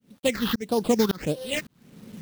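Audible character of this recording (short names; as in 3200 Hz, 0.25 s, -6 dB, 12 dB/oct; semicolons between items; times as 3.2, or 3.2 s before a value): aliases and images of a low sample rate 5900 Hz, jitter 20%; phasing stages 6, 1.6 Hz, lowest notch 600–2200 Hz; a quantiser's noise floor 10-bit, dither none; tremolo saw up 1.8 Hz, depth 100%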